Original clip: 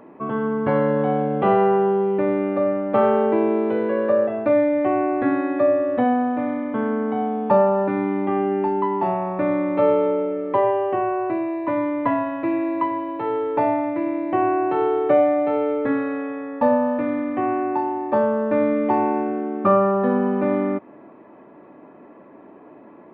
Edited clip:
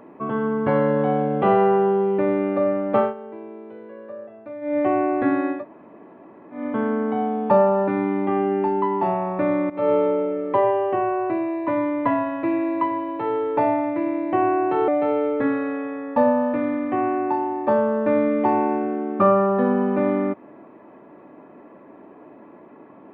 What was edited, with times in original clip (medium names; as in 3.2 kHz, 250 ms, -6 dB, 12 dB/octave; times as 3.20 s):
2.97–4.78 s: dip -18 dB, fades 0.17 s
5.57–6.58 s: room tone, crossfade 0.16 s
9.70–9.95 s: fade in, from -18 dB
14.88–15.33 s: delete